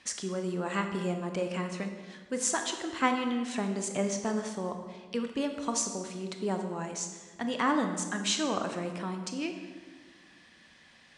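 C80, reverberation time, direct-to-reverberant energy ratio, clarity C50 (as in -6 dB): 8.0 dB, 1.5 s, 5.0 dB, 6.5 dB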